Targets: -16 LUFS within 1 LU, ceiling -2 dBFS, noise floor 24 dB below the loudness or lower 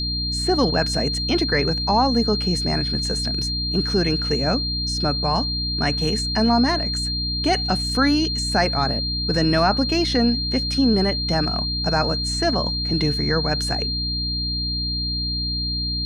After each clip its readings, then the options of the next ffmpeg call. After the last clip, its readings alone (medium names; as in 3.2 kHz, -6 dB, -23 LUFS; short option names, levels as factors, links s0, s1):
hum 60 Hz; highest harmonic 300 Hz; hum level -26 dBFS; steady tone 4.2 kHz; tone level -24 dBFS; loudness -20.5 LUFS; peak level -5.0 dBFS; loudness target -16.0 LUFS
-> -af "bandreject=f=60:t=h:w=6,bandreject=f=120:t=h:w=6,bandreject=f=180:t=h:w=6,bandreject=f=240:t=h:w=6,bandreject=f=300:t=h:w=6"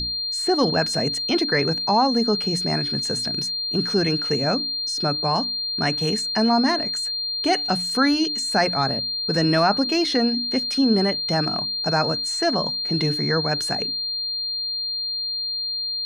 hum not found; steady tone 4.2 kHz; tone level -24 dBFS
-> -af "bandreject=f=4200:w=30"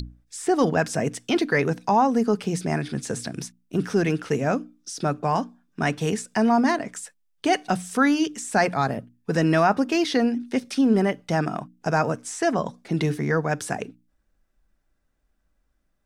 steady tone not found; loudness -24.0 LUFS; peak level -6.5 dBFS; loudness target -16.0 LUFS
-> -af "volume=2.51,alimiter=limit=0.794:level=0:latency=1"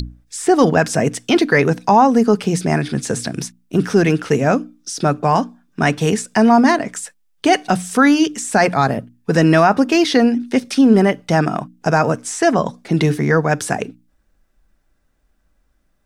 loudness -16.0 LUFS; peak level -2.0 dBFS; noise floor -62 dBFS